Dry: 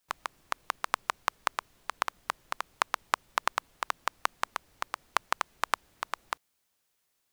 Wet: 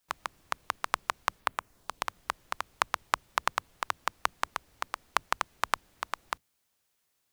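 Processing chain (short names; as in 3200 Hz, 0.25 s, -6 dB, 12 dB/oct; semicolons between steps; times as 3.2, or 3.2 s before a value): octaver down 1 oct, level -4 dB; 1.39–2.04 bell 8100 Hz -> 1300 Hz -8.5 dB 0.79 oct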